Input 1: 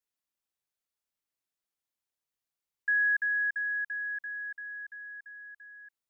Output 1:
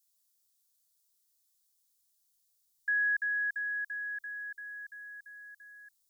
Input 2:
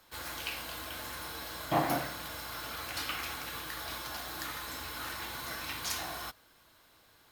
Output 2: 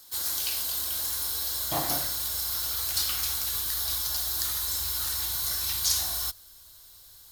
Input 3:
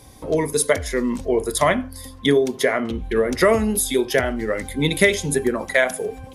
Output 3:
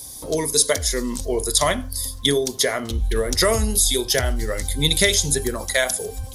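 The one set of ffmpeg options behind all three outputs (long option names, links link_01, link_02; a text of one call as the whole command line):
ffmpeg -i in.wav -filter_complex "[0:a]asubboost=boost=7.5:cutoff=85,acrossover=split=6500[link_01][link_02];[link_02]acompressor=threshold=-40dB:ratio=4:attack=1:release=60[link_03];[link_01][link_03]amix=inputs=2:normalize=0,aexciter=amount=7.1:drive=3.8:freq=3600,volume=-2.5dB" out.wav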